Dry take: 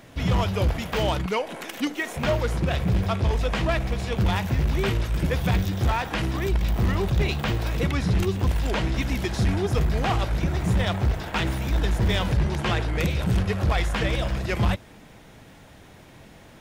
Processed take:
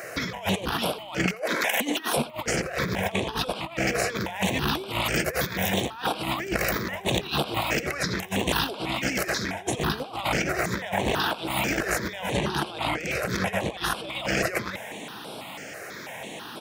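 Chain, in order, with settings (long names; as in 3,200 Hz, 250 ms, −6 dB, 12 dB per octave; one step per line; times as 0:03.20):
Bessel high-pass filter 440 Hz, order 2
in parallel at +3 dB: brickwall limiter −25 dBFS, peak gain reduction 11 dB
on the sum: compressor whose output falls as the input rises −30 dBFS, ratio −0.5
single-tap delay 86 ms −21.5 dB
step-sequenced phaser 6.1 Hz 930–6,600 Hz
level +5.5 dB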